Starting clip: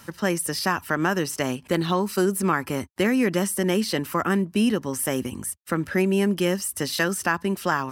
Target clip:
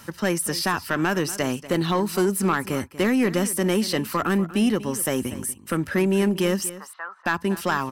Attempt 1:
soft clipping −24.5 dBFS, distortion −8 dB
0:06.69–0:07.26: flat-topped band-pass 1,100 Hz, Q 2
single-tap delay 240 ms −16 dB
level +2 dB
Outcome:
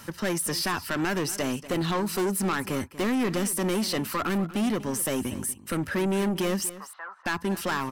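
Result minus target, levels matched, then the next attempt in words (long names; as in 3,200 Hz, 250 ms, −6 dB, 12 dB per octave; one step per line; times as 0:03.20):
soft clipping: distortion +9 dB
soft clipping −14.5 dBFS, distortion −17 dB
0:06.69–0:07.26: flat-topped band-pass 1,100 Hz, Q 2
single-tap delay 240 ms −16 dB
level +2 dB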